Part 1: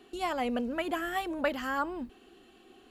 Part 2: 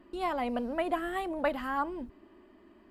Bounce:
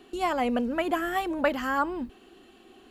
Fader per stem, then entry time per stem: +3.0, −7.0 decibels; 0.00, 0.00 seconds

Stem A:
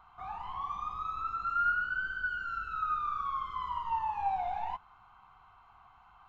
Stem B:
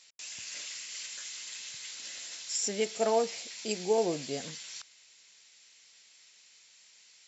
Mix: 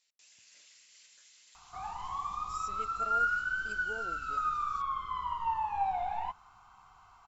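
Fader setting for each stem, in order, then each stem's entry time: +0.5, −18.0 decibels; 1.55, 0.00 seconds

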